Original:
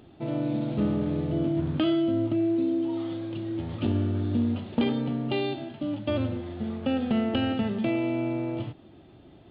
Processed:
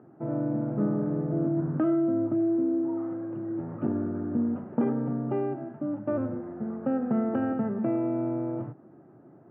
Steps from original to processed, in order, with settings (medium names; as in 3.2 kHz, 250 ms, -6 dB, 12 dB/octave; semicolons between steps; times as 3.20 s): elliptic band-pass 130–1500 Hz, stop band 40 dB